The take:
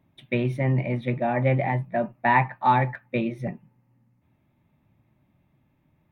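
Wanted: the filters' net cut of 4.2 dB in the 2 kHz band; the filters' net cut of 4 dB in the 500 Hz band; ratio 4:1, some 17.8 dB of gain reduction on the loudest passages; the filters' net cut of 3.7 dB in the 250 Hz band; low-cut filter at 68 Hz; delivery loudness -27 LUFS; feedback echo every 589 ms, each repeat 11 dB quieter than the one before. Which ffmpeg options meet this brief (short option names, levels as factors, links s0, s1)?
-af "highpass=68,equalizer=f=250:t=o:g=-3.5,equalizer=f=500:t=o:g=-4,equalizer=f=2000:t=o:g=-4.5,acompressor=threshold=0.0112:ratio=4,aecho=1:1:589|1178|1767:0.282|0.0789|0.0221,volume=5.01"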